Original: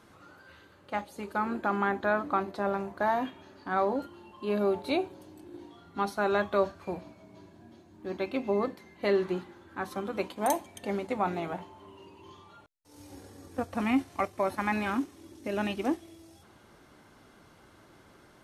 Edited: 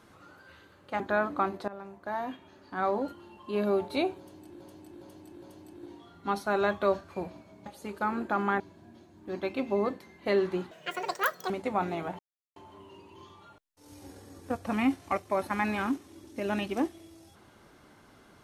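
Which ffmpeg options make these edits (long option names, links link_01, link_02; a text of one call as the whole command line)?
ffmpeg -i in.wav -filter_complex "[0:a]asplit=11[link_01][link_02][link_03][link_04][link_05][link_06][link_07][link_08][link_09][link_10][link_11];[link_01]atrim=end=1.002[link_12];[link_02]atrim=start=1.938:end=2.62,asetpts=PTS-STARTPTS,afade=type=out:start_time=0.678:duration=0.004:curve=hsin:silence=0.149624[link_13];[link_03]atrim=start=2.62:end=5.542,asetpts=PTS-STARTPTS,afade=type=in:duration=1.9:curve=qsin:silence=0.149624[link_14];[link_04]atrim=start=5.128:end=5.542[link_15];[link_05]atrim=start=5.128:end=5.542[link_16];[link_06]atrim=start=5.128:end=7.372[link_17];[link_07]atrim=start=0.998:end=1.942[link_18];[link_08]atrim=start=7.368:end=9.484[link_19];[link_09]atrim=start=9.48:end=10.95,asetpts=PTS-STARTPTS,asetrate=82026,aresample=44100,atrim=end_sample=34853,asetpts=PTS-STARTPTS[link_20];[link_10]atrim=start=10.946:end=11.64,asetpts=PTS-STARTPTS,afade=type=out:start_time=0.69:duration=0.004:curve=hsin,apad=pad_dur=0.37[link_21];[link_11]atrim=start=11.64,asetpts=PTS-STARTPTS,afade=type=in:duration=0.004:curve=hsin[link_22];[link_13][link_14]concat=n=2:v=0:a=1[link_23];[link_12][link_23]acrossfade=duration=0.004:curve1=hsin:curve2=hsin[link_24];[link_24][link_15]acrossfade=duration=0.004:curve1=hsin:curve2=hsin[link_25];[link_25][link_16]acrossfade=duration=0.004:curve1=hsin:curve2=hsin[link_26];[link_26][link_17]acrossfade=duration=0.004:curve1=hsin:curve2=hsin[link_27];[link_27][link_18]acrossfade=duration=0.004:curve1=hsin:curve2=hsin[link_28];[link_28][link_19]acrossfade=duration=0.004:curve1=hsin:curve2=hsin[link_29];[link_29][link_20]acrossfade=duration=0.004:curve1=hsin:curve2=hsin[link_30];[link_21][link_22]concat=n=2:v=0:a=1[link_31];[link_30][link_31]acrossfade=duration=0.004:curve1=hsin:curve2=hsin" out.wav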